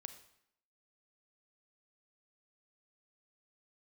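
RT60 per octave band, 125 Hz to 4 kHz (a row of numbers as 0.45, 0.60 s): 0.65, 0.80, 0.75, 0.75, 0.70, 0.65 s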